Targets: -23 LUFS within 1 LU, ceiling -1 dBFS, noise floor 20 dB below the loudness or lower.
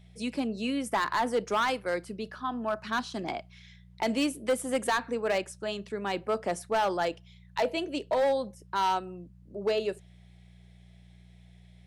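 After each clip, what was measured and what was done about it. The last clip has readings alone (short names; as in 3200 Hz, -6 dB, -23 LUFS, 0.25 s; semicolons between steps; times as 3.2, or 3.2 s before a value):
clipped 1.2%; flat tops at -21.0 dBFS; hum 60 Hz; harmonics up to 180 Hz; hum level -52 dBFS; loudness -30.5 LUFS; peak -21.0 dBFS; loudness target -23.0 LUFS
-> clip repair -21 dBFS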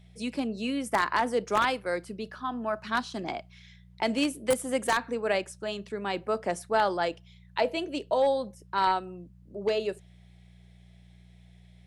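clipped 0.0%; hum 60 Hz; harmonics up to 180 Hz; hum level -52 dBFS
-> de-hum 60 Hz, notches 3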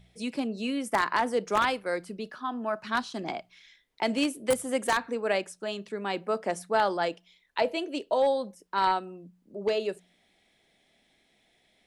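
hum none; loudness -29.5 LUFS; peak -12.0 dBFS; loudness target -23.0 LUFS
-> gain +6.5 dB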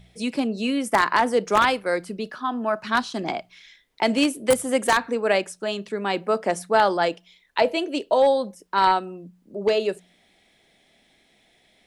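loudness -23.0 LUFS; peak -5.5 dBFS; noise floor -62 dBFS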